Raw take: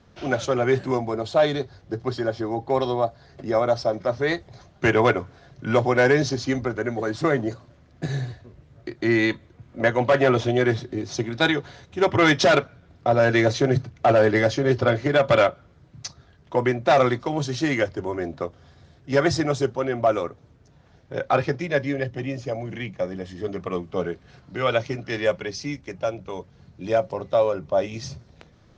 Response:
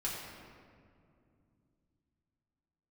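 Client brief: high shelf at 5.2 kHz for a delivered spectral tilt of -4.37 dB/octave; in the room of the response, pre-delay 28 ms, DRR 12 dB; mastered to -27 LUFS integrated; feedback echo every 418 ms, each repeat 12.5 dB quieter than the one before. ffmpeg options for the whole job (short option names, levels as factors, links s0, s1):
-filter_complex "[0:a]highshelf=f=5200:g=5,aecho=1:1:418|836|1254:0.237|0.0569|0.0137,asplit=2[s0][s1];[1:a]atrim=start_sample=2205,adelay=28[s2];[s1][s2]afir=irnorm=-1:irlink=0,volume=0.178[s3];[s0][s3]amix=inputs=2:normalize=0,volume=0.596"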